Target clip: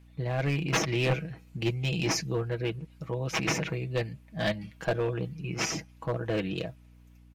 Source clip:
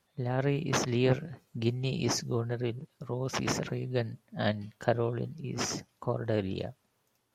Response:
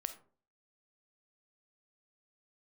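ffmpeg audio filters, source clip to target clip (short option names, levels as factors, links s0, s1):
-af "equalizer=f=2400:t=o:w=0.65:g=9.5,aecho=1:1:6.2:0.67,aeval=exprs='val(0)+0.00224*(sin(2*PI*60*n/s)+sin(2*PI*2*60*n/s)/2+sin(2*PI*3*60*n/s)/3+sin(2*PI*4*60*n/s)/4+sin(2*PI*5*60*n/s)/5)':c=same,acontrast=58,aeval=exprs='clip(val(0),-1,0.178)':c=same,volume=0.473"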